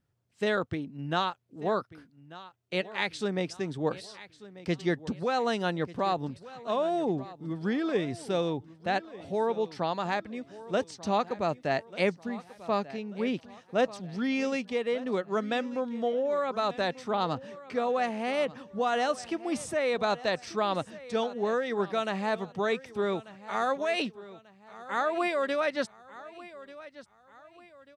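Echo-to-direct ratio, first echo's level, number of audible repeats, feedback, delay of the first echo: -17.0 dB, -17.5 dB, 3, 40%, 1190 ms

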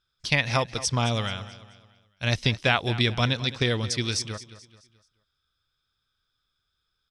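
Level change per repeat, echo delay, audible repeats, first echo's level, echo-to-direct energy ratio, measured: -8.0 dB, 216 ms, 3, -15.5 dB, -14.5 dB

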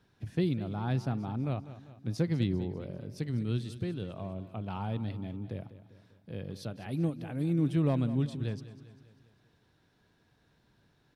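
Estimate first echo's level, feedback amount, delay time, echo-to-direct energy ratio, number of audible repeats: -14.5 dB, 52%, 198 ms, -13.0 dB, 4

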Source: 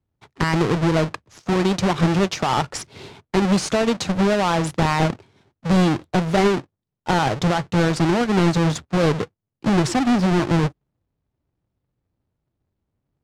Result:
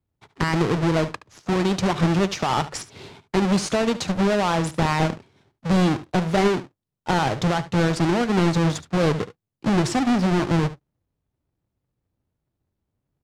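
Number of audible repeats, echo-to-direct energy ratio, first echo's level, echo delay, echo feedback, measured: 1, -15.5 dB, -15.5 dB, 72 ms, no regular repeats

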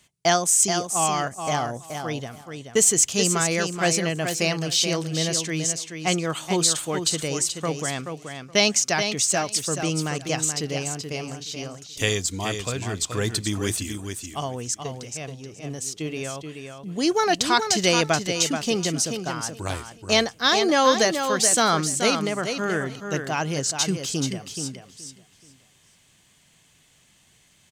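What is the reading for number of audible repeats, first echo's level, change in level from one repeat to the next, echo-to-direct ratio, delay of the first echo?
3, -7.0 dB, -11.5 dB, -7.0 dB, 429 ms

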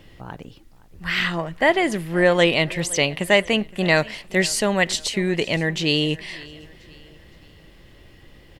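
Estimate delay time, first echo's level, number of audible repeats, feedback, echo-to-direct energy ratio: 517 ms, -21.5 dB, 2, 42%, -20.5 dB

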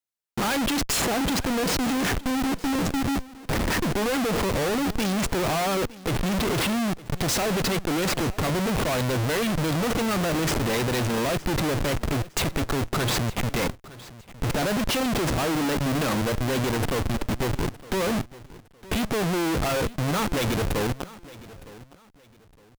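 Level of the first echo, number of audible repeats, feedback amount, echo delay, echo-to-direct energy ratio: -19.0 dB, 2, 28%, 912 ms, -18.5 dB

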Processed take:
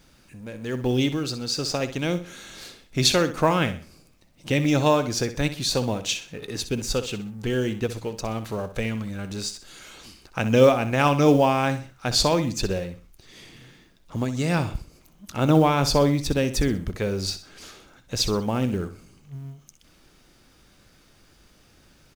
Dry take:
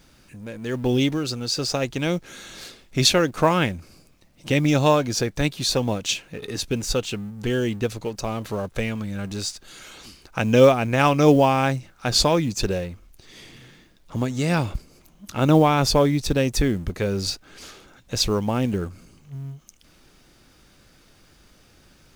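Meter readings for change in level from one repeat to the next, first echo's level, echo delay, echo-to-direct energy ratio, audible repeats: -9.5 dB, -12.0 dB, 63 ms, -11.5 dB, 3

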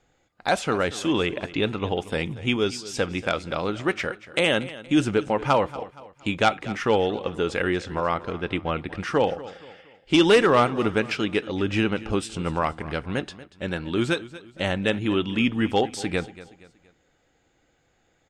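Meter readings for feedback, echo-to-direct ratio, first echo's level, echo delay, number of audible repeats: 40%, -16.5 dB, -17.0 dB, 235 ms, 3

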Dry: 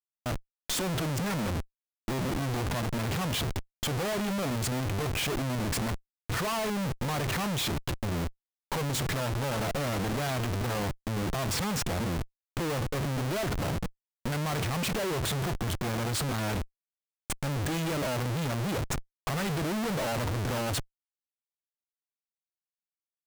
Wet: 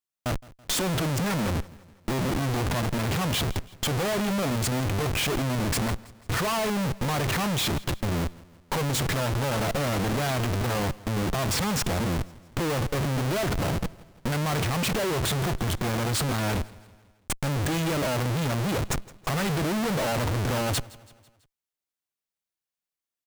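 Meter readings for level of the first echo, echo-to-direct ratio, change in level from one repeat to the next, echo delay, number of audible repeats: -21.5 dB, -20.0 dB, -5.5 dB, 165 ms, 3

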